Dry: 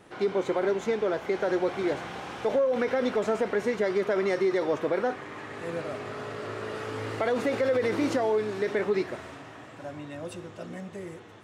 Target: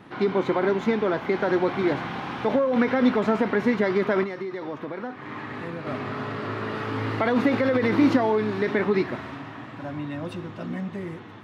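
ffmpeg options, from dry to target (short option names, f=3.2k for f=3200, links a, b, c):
-filter_complex "[0:a]equalizer=f=125:t=o:w=1:g=8,equalizer=f=250:t=o:w=1:g=10,equalizer=f=500:t=o:w=1:g=-3,equalizer=f=1k:t=o:w=1:g=7,equalizer=f=2k:t=o:w=1:g=4,equalizer=f=4k:t=o:w=1:g=5,equalizer=f=8k:t=o:w=1:g=-11,asettb=1/sr,asplit=3[a][b][c];[a]atrim=end=4.234[d];[b]atrim=start=4.23:end=5.87,asetpts=PTS-STARTPTS,afade=t=in:d=0.004:c=qsin,afade=t=out:st=1.636:d=0.004:c=qsin,acompressor=threshold=-30dB:ratio=6[e];[c]atrim=start=5.866[f];[d][e]acrossfade=d=0.004:c1=hsin:c2=qsin[g];[g][f]acrossfade=d=0.004:c1=qsin:c2=hsin"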